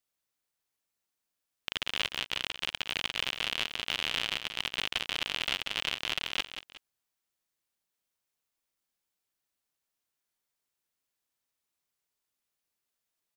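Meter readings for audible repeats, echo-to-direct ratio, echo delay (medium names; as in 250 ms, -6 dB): 2, -9.0 dB, 183 ms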